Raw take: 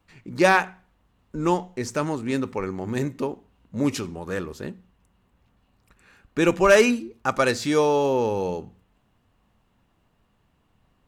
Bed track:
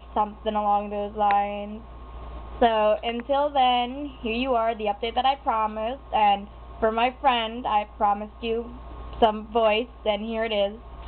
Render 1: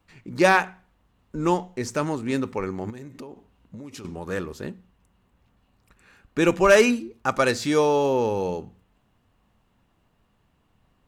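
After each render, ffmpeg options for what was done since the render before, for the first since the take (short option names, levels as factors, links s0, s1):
-filter_complex "[0:a]asettb=1/sr,asplit=3[s0][s1][s2];[s0]atrim=end=2.904[s3];[s1]atrim=start=2.9:end=4.05,asetpts=PTS-STARTPTS,afade=t=in:d=0.004:c=qsin,afade=t=out:st=1.146:d=0.004:c=qsin,acompressor=threshold=0.0178:ratio=16:attack=3.2:release=140:knee=1:detection=peak[s4];[s2]atrim=start=4.046[s5];[s3][s4]acrossfade=d=0.004:c1=hsin:c2=qsin[s6];[s6][s5]acrossfade=d=0.004:c1=qsin:c2=hsin"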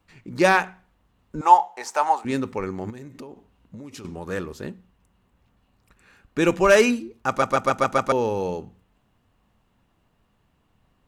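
-filter_complex "[0:a]asettb=1/sr,asplit=3[s0][s1][s2];[s0]atrim=end=1.414[s3];[s1]atrim=start=1.41:end=2.25,asetpts=PTS-STARTPTS,afade=t=in:d=0.004:c=qsin,afade=t=out:st=0.836:d=0.004:c=qsin,highpass=f=810:t=q:w=8.8[s4];[s2]atrim=start=2.246[s5];[s3][s4]acrossfade=d=0.004:c1=hsin:c2=qsin[s6];[s6][s5]acrossfade=d=0.004:c1=qsin:c2=hsin,asplit=7[s7][s8][s9][s10][s11][s12][s13];[s7]atrim=end=7.422[s14];[s8]atrim=start=7.278:end=7.422[s15];[s9]atrim=start=7.278:end=7.422[s16];[s10]atrim=start=7.278:end=7.422[s17];[s11]atrim=start=7.278:end=7.422[s18];[s12]atrim=start=7.278:end=7.422[s19];[s13]atrim=start=8.118[s20];[s14][s15]acrossfade=d=0.004:c1=hsin:c2=hsin[s21];[s21][s16]acrossfade=d=0.004:c1=hsin:c2=hsin[s22];[s22][s17]acrossfade=d=0.004:c1=hsin:c2=hsin[s23];[s23][s18]acrossfade=d=0.004:c1=hsin:c2=hsin[s24];[s24][s19]acrossfade=d=0.004:c1=hsin:c2=hsin[s25];[s25][s20]acrossfade=d=0.004:c1=hsin:c2=hsin"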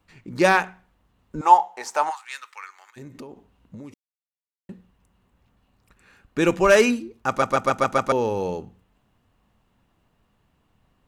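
-filter_complex "[0:a]asplit=3[s0][s1][s2];[s0]afade=t=out:st=2.09:d=0.02[s3];[s1]highpass=f=1200:w=0.5412,highpass=f=1200:w=1.3066,afade=t=in:st=2.09:d=0.02,afade=t=out:st=2.96:d=0.02[s4];[s2]afade=t=in:st=2.96:d=0.02[s5];[s3][s4][s5]amix=inputs=3:normalize=0,asplit=3[s6][s7][s8];[s6]atrim=end=3.94,asetpts=PTS-STARTPTS,afade=t=out:st=3.936:d=0.004:c=hsin[s9];[s7]atrim=start=3.94:end=4.69,asetpts=PTS-STARTPTS,volume=0[s10];[s8]atrim=start=4.69,asetpts=PTS-STARTPTS,afade=t=in:d=0.004:c=hsin[s11];[s9][s10][s11]concat=n=3:v=0:a=1"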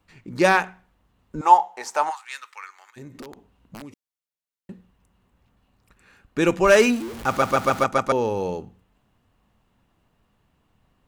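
-filter_complex "[0:a]asettb=1/sr,asplit=3[s0][s1][s2];[s0]atrim=end=3.214[s3];[s1]atrim=start=3.21:end=3.82,asetpts=PTS-STARTPTS,afade=t=in:d=0.004:c=qsin,afade=t=out:st=0.606:d=0.004:c=qsin,aeval=exprs='(mod(39.8*val(0)+1,2)-1)/39.8':c=same[s4];[s2]atrim=start=3.816[s5];[s3][s4]acrossfade=d=0.004:c1=hsin:c2=qsin[s6];[s6][s5]acrossfade=d=0.004:c1=qsin:c2=hsin,asettb=1/sr,asplit=3[s7][s8][s9];[s7]atrim=end=6.674[s10];[s8]atrim=start=6.67:end=7.84,asetpts=PTS-STARTPTS,afade=t=in:d=0.004:c=qsin,afade=t=out:st=1.166:d=0.004:c=qsin,aeval=exprs='val(0)+0.5*0.0282*sgn(val(0))':c=same[s11];[s9]atrim=start=7.836[s12];[s10][s11]acrossfade=d=0.004:c1=hsin:c2=qsin[s13];[s13][s12]acrossfade=d=0.004:c1=qsin:c2=hsin"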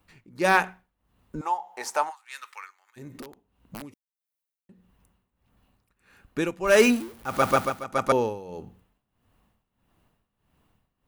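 -af "tremolo=f=1.6:d=0.83,aexciter=amount=2.6:drive=2:freq=9600"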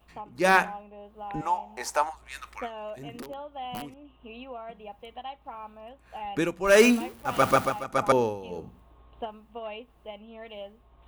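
-filter_complex "[1:a]volume=0.141[s0];[0:a][s0]amix=inputs=2:normalize=0"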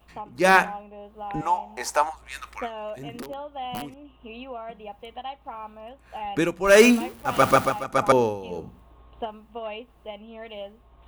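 -af "volume=1.5"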